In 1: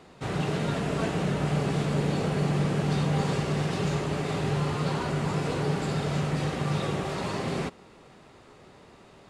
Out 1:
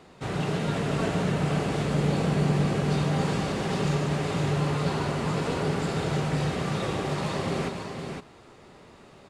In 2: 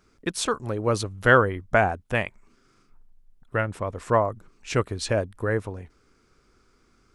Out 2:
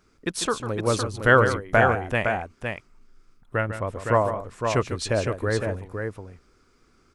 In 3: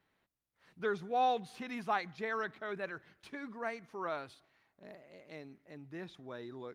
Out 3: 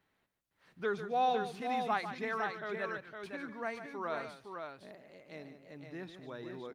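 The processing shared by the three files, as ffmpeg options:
-af "aecho=1:1:147|511:0.299|0.531"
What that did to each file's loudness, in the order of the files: +1.0, +0.5, +1.0 LU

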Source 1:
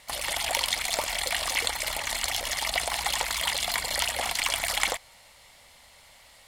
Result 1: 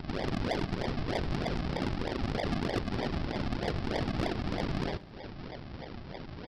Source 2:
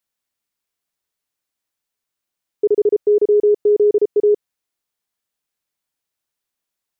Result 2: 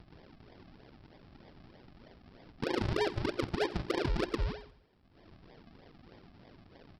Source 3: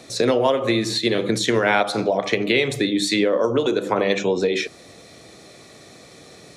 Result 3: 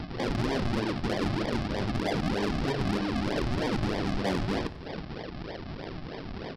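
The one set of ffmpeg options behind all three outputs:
-filter_complex "[0:a]highpass=f=120:p=1,bandreject=f=60:t=h:w=6,bandreject=f=120:t=h:w=6,bandreject=f=180:t=h:w=6,bandreject=f=240:t=h:w=6,bandreject=f=300:t=h:w=6,bandreject=f=360:t=h:w=6,bandreject=f=420:t=h:w=6,afftfilt=real='re*lt(hypot(re,im),0.562)':imag='im*lt(hypot(re,im),0.562)':win_size=1024:overlap=0.75,lowpass=f=2.5k:w=0.5412,lowpass=f=2.5k:w=1.3066,asplit=2[a][b];[b]acompressor=threshold=-35dB:ratio=8,volume=2.5dB[c];[a][c]amix=inputs=2:normalize=0,alimiter=limit=-17dB:level=0:latency=1:release=55,acompressor=mode=upward:threshold=-32dB:ratio=2.5,aresample=11025,acrusher=samples=16:mix=1:aa=0.000001:lfo=1:lforange=16:lforate=3.2,aresample=44100,asoftclip=type=tanh:threshold=-23dB,aecho=1:1:89|178|267|356:0.112|0.0606|0.0327|0.0177"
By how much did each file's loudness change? -7.5, -18.0, -10.5 LU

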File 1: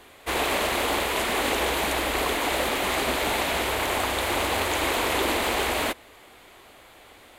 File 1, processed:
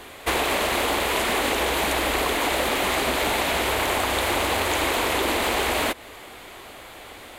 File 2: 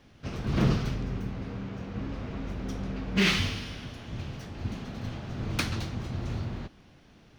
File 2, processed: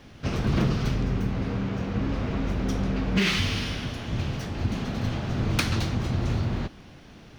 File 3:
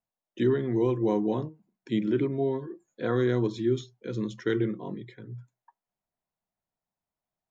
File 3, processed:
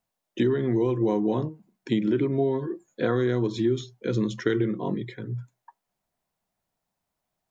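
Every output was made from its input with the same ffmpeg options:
-af "acompressor=threshold=-29dB:ratio=5,volume=8.5dB"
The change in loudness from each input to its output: +2.0, +4.5, +2.0 LU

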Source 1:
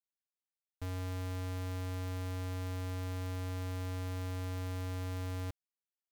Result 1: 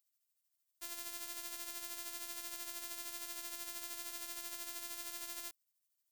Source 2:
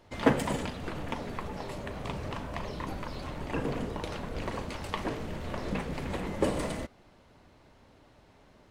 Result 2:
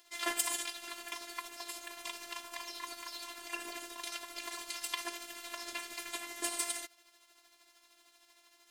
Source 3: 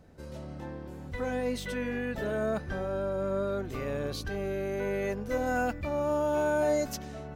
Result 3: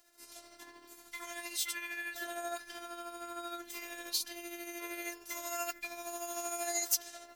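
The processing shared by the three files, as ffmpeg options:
-af "tremolo=f=13:d=0.48,aderivative,afftfilt=real='hypot(re,im)*cos(PI*b)':imag='0':win_size=512:overlap=0.75,volume=15.5dB"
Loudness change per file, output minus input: -3.0, -4.5, -6.5 LU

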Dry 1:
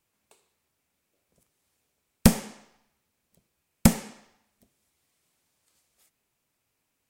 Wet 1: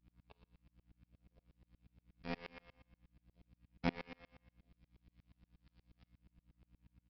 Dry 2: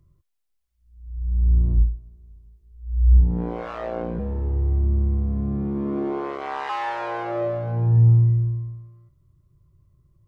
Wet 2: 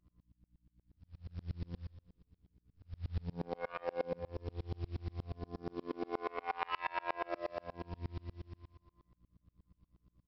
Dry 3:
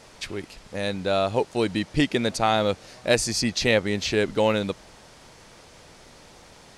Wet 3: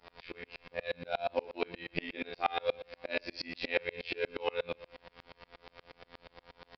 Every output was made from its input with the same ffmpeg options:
-filter_complex "[0:a]afftfilt=real='hypot(re,im)*cos(PI*b)':imag='0':win_size=2048:overlap=0.75,bass=f=250:g=-11,treble=f=4k:g=-7,acompressor=threshold=-43dB:ratio=1.5,aresample=11025,acrusher=bits=6:mode=log:mix=0:aa=0.000001,aresample=44100,aeval=exprs='val(0)+0.000562*(sin(2*PI*60*n/s)+sin(2*PI*2*60*n/s)/2+sin(2*PI*3*60*n/s)/3+sin(2*PI*4*60*n/s)/4+sin(2*PI*5*60*n/s)/5)':c=same,adynamicequalizer=threshold=0.001:dfrequency=2400:dqfactor=3.3:tfrequency=2400:tqfactor=3.3:attack=5:release=100:ratio=0.375:range=3.5:mode=boostabove:tftype=bell,asplit=2[a][b];[b]adelay=39,volume=-6.5dB[c];[a][c]amix=inputs=2:normalize=0,asplit=2[d][e];[e]aecho=0:1:118|236|354|472:0.15|0.0703|0.0331|0.0155[f];[d][f]amix=inputs=2:normalize=0,aeval=exprs='val(0)*pow(10,-33*if(lt(mod(-8.4*n/s,1),2*abs(-8.4)/1000),1-mod(-8.4*n/s,1)/(2*abs(-8.4)/1000),(mod(-8.4*n/s,1)-2*abs(-8.4)/1000)/(1-2*abs(-8.4)/1000))/20)':c=same,volume=6.5dB"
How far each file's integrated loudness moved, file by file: -20.5, -20.0, -13.0 LU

